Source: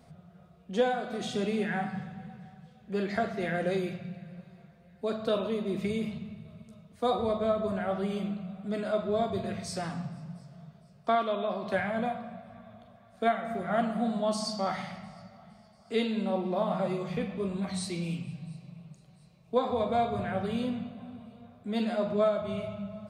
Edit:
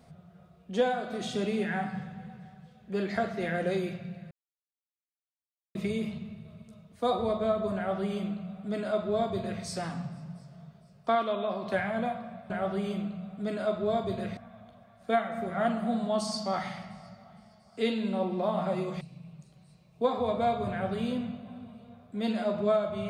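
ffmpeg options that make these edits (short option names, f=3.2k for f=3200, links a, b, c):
-filter_complex "[0:a]asplit=6[a][b][c][d][e][f];[a]atrim=end=4.31,asetpts=PTS-STARTPTS,afade=t=out:st=4.306:d=0.004:c=hsin[g];[b]atrim=start=4.31:end=5.75,asetpts=PTS-STARTPTS,volume=0[h];[c]atrim=start=5.75:end=12.502,asetpts=PTS-STARTPTS,afade=t=in:d=0.004:c=hsin[i];[d]atrim=start=7.758:end=9.632[j];[e]atrim=start=12.498:end=17.142[k];[f]atrim=start=18.528[l];[g][h][i]concat=n=3:v=0:a=1[m];[m][j]acrossfade=d=0.004:c1=hsin:c2=hsin[n];[n][k]acrossfade=d=0.004:c1=hsin:c2=hsin[o];[o][l]acrossfade=d=0.004:c1=hsin:c2=hsin"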